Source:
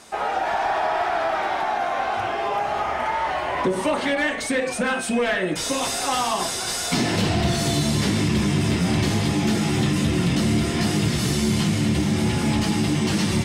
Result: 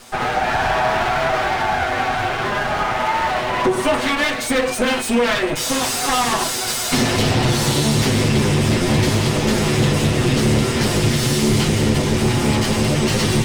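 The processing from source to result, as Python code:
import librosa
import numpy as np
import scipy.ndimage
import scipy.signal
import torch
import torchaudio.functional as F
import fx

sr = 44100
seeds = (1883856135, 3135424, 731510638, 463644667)

y = fx.lower_of_two(x, sr, delay_ms=8.0)
y = y * 10.0 ** (6.0 / 20.0)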